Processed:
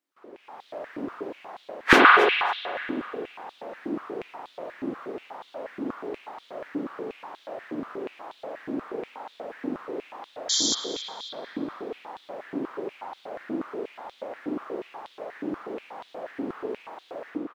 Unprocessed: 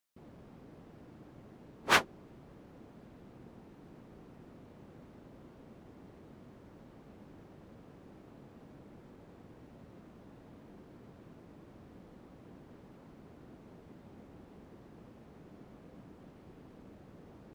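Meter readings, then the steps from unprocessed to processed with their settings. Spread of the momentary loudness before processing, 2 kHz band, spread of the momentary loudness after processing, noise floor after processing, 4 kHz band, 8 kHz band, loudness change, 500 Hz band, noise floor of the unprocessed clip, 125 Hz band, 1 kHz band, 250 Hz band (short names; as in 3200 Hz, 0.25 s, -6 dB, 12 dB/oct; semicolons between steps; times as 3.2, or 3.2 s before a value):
20 LU, +14.5 dB, 18 LU, -57 dBFS, +13.0 dB, +16.0 dB, +2.5 dB, +18.5 dB, -57 dBFS, +5.0 dB, +16.0 dB, +18.0 dB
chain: high shelf 4400 Hz -9.5 dB; AGC gain up to 14 dB; painted sound noise, 10.49–10.75, 3100–7400 Hz -27 dBFS; feedback echo 0.273 s, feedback 25%, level -19 dB; spring tank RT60 2.1 s, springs 43 ms, chirp 25 ms, DRR 2 dB; maximiser +9 dB; stepped high-pass 8.3 Hz 290–3600 Hz; gain -7 dB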